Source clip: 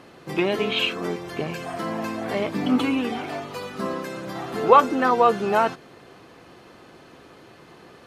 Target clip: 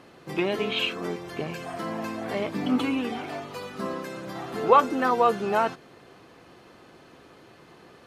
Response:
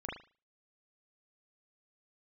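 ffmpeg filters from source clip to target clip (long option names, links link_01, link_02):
-filter_complex "[0:a]asettb=1/sr,asplit=3[link_01][link_02][link_03];[link_01]atrim=end=4.904[link_04];[link_02]atrim=start=4.9:end=5.35,asetpts=PTS-STARTPTS,afade=type=in:duration=0.004:curve=qsin,afade=type=out:start_time=0.446:duration=0.004:curve=qsin,highshelf=frequency=12000:gain=10[link_05];[link_03]atrim=start=5.346[link_06];[link_04][link_05]acrossfade=duration=0.004:curve1=hsin:curve2=qsin[link_07];[link_07][link_06]acrossfade=duration=0.004:curve1=qsin:curve2=hsin,volume=-3.5dB"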